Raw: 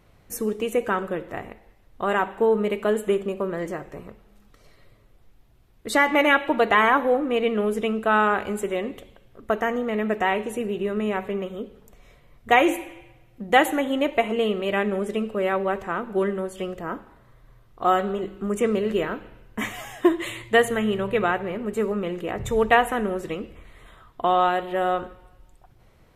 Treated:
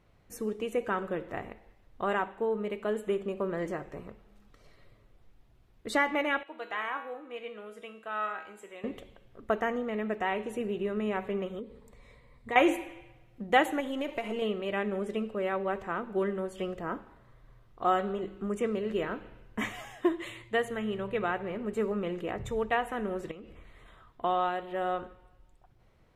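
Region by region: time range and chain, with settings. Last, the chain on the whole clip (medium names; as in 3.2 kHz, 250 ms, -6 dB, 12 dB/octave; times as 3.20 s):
6.43–8.84 s: low-pass 2 kHz 6 dB/octave + tilt EQ +4 dB/octave + feedback comb 160 Hz, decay 0.6 s, mix 80%
11.59–12.56 s: rippled EQ curve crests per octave 0.97, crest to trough 9 dB + compression 2:1, threshold -37 dBFS
13.80–14.42 s: partial rectifier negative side -3 dB + treble shelf 5.4 kHz +9 dB + compression 5:1, threshold -23 dBFS
23.31–24.21 s: transient shaper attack -4 dB, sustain 0 dB + compression 12:1, threshold -36 dBFS
whole clip: treble shelf 9.3 kHz -10.5 dB; gain riding within 4 dB 0.5 s; trim -8 dB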